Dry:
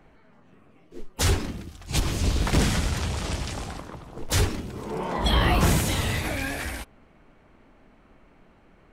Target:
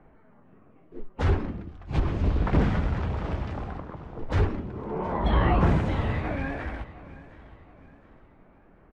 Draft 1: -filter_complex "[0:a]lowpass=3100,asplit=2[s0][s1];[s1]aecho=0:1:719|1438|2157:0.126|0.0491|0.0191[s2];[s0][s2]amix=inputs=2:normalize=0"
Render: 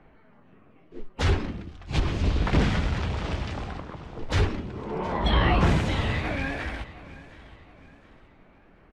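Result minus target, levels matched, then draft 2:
4 kHz band +10.0 dB
-filter_complex "[0:a]lowpass=1500,asplit=2[s0][s1];[s1]aecho=0:1:719|1438|2157:0.126|0.0491|0.0191[s2];[s0][s2]amix=inputs=2:normalize=0"

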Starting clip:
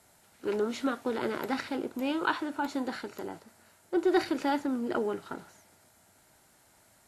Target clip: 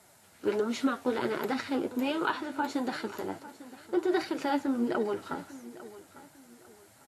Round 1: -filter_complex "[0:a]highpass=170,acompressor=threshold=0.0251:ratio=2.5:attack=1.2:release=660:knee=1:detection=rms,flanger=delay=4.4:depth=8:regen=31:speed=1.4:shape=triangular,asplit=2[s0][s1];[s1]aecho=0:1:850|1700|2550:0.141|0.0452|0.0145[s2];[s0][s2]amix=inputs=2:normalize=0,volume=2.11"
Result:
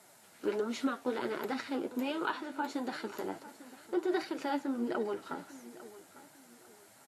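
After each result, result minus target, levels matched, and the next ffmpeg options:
compression: peak gain reduction +4.5 dB; 125 Hz band -2.5 dB
-filter_complex "[0:a]highpass=170,acompressor=threshold=0.0562:ratio=2.5:attack=1.2:release=660:knee=1:detection=rms,flanger=delay=4.4:depth=8:regen=31:speed=1.4:shape=triangular,asplit=2[s0][s1];[s1]aecho=0:1:850|1700|2550:0.141|0.0452|0.0145[s2];[s0][s2]amix=inputs=2:normalize=0,volume=2.11"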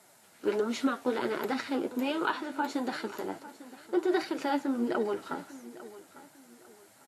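125 Hz band -3.0 dB
-filter_complex "[0:a]highpass=51,acompressor=threshold=0.0562:ratio=2.5:attack=1.2:release=660:knee=1:detection=rms,flanger=delay=4.4:depth=8:regen=31:speed=1.4:shape=triangular,asplit=2[s0][s1];[s1]aecho=0:1:850|1700|2550:0.141|0.0452|0.0145[s2];[s0][s2]amix=inputs=2:normalize=0,volume=2.11"

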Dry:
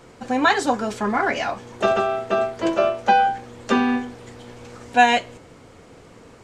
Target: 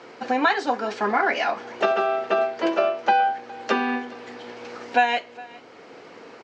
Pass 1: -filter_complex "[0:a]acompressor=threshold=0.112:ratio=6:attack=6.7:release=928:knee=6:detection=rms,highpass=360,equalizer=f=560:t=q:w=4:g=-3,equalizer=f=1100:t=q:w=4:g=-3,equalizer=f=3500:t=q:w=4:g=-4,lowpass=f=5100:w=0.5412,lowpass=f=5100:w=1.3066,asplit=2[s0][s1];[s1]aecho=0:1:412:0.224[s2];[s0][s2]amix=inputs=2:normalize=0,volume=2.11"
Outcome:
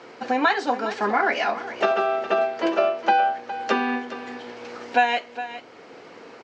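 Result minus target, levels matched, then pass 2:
echo-to-direct +8.5 dB
-filter_complex "[0:a]acompressor=threshold=0.112:ratio=6:attack=6.7:release=928:knee=6:detection=rms,highpass=360,equalizer=f=560:t=q:w=4:g=-3,equalizer=f=1100:t=q:w=4:g=-3,equalizer=f=3500:t=q:w=4:g=-4,lowpass=f=5100:w=0.5412,lowpass=f=5100:w=1.3066,asplit=2[s0][s1];[s1]aecho=0:1:412:0.0841[s2];[s0][s2]amix=inputs=2:normalize=0,volume=2.11"

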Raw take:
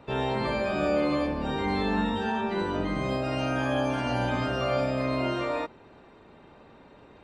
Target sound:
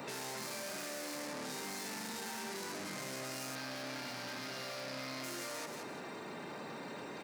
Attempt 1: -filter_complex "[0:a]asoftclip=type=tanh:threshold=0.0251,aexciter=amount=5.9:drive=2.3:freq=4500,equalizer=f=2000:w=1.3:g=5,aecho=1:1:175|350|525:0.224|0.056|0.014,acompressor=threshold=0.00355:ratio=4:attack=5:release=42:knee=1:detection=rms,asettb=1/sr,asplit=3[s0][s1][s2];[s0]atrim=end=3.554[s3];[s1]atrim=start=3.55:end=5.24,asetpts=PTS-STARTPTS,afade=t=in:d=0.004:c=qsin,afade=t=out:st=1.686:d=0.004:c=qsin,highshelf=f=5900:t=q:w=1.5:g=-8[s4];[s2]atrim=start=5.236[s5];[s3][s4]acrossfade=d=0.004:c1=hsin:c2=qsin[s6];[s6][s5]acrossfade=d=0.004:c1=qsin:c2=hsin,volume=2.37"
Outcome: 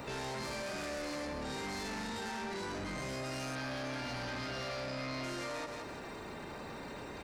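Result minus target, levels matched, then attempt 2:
125 Hz band +6.0 dB; saturation: distortion -4 dB
-filter_complex "[0:a]asoftclip=type=tanh:threshold=0.00794,aexciter=amount=5.9:drive=2.3:freq=4500,equalizer=f=2000:w=1.3:g=5,aecho=1:1:175|350|525:0.224|0.056|0.014,acompressor=threshold=0.00355:ratio=4:attack=5:release=42:knee=1:detection=rms,highpass=f=140:w=0.5412,highpass=f=140:w=1.3066,asettb=1/sr,asplit=3[s0][s1][s2];[s0]atrim=end=3.554[s3];[s1]atrim=start=3.55:end=5.24,asetpts=PTS-STARTPTS,afade=t=in:d=0.004:c=qsin,afade=t=out:st=1.686:d=0.004:c=qsin,highshelf=f=5900:t=q:w=1.5:g=-8[s4];[s2]atrim=start=5.236[s5];[s3][s4]acrossfade=d=0.004:c1=hsin:c2=qsin[s6];[s6][s5]acrossfade=d=0.004:c1=qsin:c2=hsin,volume=2.37"

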